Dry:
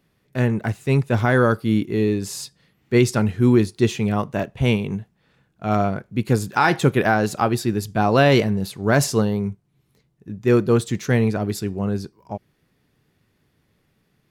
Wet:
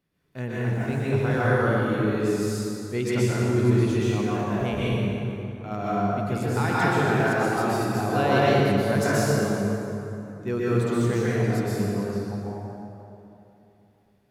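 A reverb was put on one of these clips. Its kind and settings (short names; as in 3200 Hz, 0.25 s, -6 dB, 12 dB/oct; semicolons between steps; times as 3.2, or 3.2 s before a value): plate-style reverb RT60 3 s, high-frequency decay 0.6×, pre-delay 0.11 s, DRR -8.5 dB; gain -12.5 dB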